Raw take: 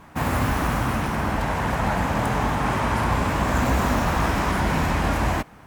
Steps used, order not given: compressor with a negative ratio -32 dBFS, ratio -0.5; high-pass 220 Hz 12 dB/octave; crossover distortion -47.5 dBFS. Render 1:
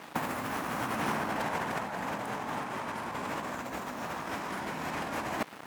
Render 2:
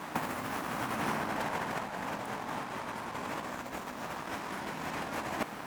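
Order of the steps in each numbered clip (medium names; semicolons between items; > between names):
crossover distortion > high-pass > compressor with a negative ratio; high-pass > compressor with a negative ratio > crossover distortion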